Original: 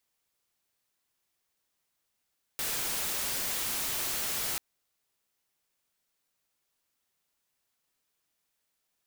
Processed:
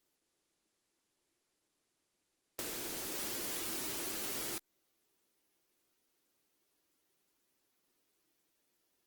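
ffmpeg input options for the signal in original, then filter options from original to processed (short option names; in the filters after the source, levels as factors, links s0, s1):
-f lavfi -i "anoisesrc=c=white:a=0.0411:d=1.99:r=44100:seed=1"
-af "equalizer=f=330:t=o:w=0.99:g=13.5,acompressor=threshold=0.0141:ratio=16" -ar 48000 -c:a libopus -b:a 16k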